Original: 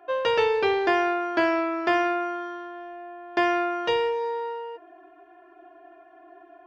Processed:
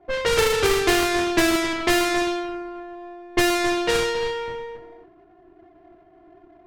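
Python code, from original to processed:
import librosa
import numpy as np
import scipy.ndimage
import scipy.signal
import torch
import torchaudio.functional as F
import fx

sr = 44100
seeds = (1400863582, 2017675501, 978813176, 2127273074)

p1 = fx.halfwave_hold(x, sr)
p2 = fx.peak_eq(p1, sr, hz=650.0, db=-8.5, octaves=2.4)
p3 = p2 + fx.echo_single(p2, sr, ms=272, db=-10.0, dry=0)
p4 = fx.env_lowpass(p3, sr, base_hz=720.0, full_db=-19.0)
p5 = fx.high_shelf(p4, sr, hz=4900.0, db=-5.5)
y = p5 * librosa.db_to_amplitude(4.0)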